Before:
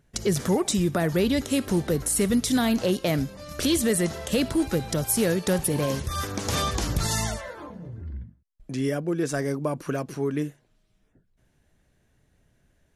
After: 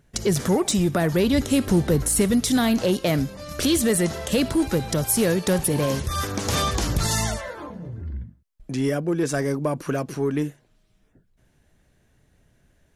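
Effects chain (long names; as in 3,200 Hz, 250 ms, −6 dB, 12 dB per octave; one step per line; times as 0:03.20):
in parallel at −5 dB: soft clipping −23 dBFS, distortion −12 dB
0:01.33–0:02.22: on the sum: low-shelf EQ 180 Hz +6.5 dB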